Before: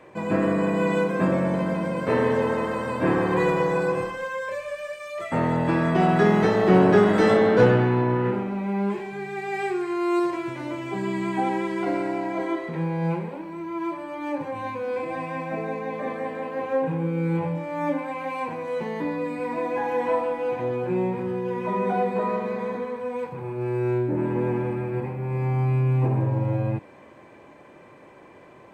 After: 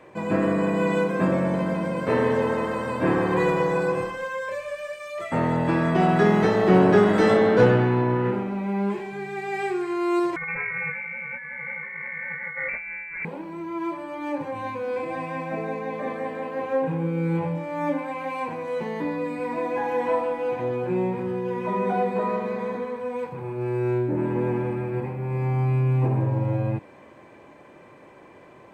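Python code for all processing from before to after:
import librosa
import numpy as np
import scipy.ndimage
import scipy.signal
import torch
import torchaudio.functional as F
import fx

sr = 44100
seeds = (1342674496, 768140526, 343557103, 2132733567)

y = fx.chain(x, sr, fx.peak_eq(hz=260.0, db=-5.5, octaves=0.23),
    fx.over_compress(threshold_db=-33.0, ratio=-1.0),
    fx.freq_invert(carrier_hz=2500), at=(10.36, 13.25))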